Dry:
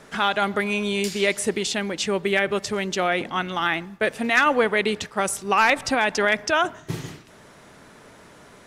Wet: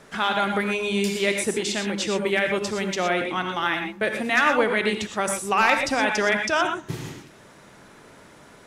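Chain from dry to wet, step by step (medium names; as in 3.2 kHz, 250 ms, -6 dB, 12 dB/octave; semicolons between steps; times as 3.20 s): gated-style reverb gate 140 ms rising, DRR 4 dB; trim -2 dB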